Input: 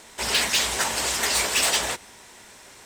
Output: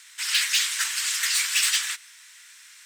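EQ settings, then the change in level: inverse Chebyshev high-pass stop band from 720 Hz, stop band 40 dB; 0.0 dB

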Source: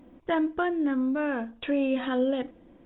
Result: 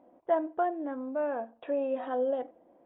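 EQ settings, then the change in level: band-pass 680 Hz, Q 2.6; +3.5 dB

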